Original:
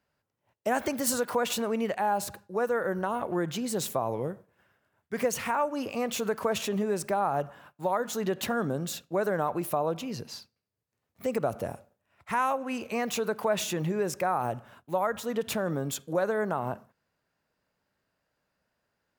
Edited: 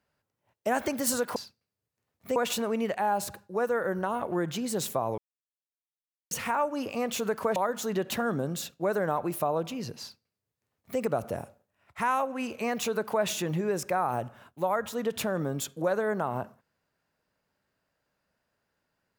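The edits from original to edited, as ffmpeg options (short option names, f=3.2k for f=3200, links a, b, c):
-filter_complex "[0:a]asplit=6[a][b][c][d][e][f];[a]atrim=end=1.362[g];[b]atrim=start=10.308:end=11.312[h];[c]atrim=start=1.358:end=4.18,asetpts=PTS-STARTPTS,afade=t=out:st=2.818:d=0.004:c=hsin[i];[d]atrim=start=4.18:end=5.31,asetpts=PTS-STARTPTS,volume=0[j];[e]atrim=start=5.31:end=6.562,asetpts=PTS-STARTPTS,afade=t=in:d=0.004:c=hsin[k];[f]atrim=start=7.868[l];[g][h]acrossfade=d=0.004:c1=hsin:c2=hsin[m];[i][j][k]concat=n=3:v=0:a=1[n];[m][n]acrossfade=d=0.004:c1=hsin:c2=hsin[o];[o][l]acrossfade=d=0.004:c1=hsin:c2=hsin"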